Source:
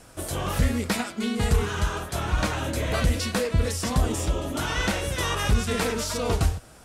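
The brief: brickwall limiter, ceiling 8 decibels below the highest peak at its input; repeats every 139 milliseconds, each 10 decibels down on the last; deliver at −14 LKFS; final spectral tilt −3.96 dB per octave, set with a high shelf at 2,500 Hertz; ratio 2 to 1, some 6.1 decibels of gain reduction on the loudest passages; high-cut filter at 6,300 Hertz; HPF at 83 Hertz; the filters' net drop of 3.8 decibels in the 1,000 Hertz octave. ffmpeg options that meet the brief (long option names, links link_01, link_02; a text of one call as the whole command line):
ffmpeg -i in.wav -af "highpass=83,lowpass=6300,equalizer=frequency=1000:width_type=o:gain=-6,highshelf=frequency=2500:gain=5,acompressor=threshold=-31dB:ratio=2,alimiter=level_in=0.5dB:limit=-24dB:level=0:latency=1,volume=-0.5dB,aecho=1:1:139|278|417|556:0.316|0.101|0.0324|0.0104,volume=19dB" out.wav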